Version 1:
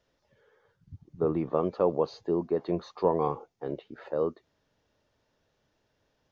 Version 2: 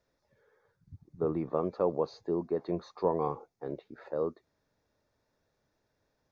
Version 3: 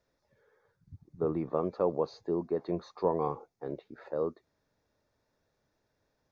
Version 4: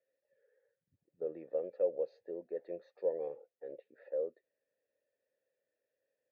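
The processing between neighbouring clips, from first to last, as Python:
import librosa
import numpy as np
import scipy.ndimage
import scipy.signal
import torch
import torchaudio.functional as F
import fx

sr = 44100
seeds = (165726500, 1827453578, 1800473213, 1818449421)

y1 = fx.peak_eq(x, sr, hz=3000.0, db=-14.5, octaves=0.22)
y1 = F.gain(torch.from_numpy(y1), -3.5).numpy()
y2 = y1
y3 = fx.vowel_filter(y2, sr, vowel='e')
y3 = F.gain(torch.from_numpy(y3), 1.0).numpy()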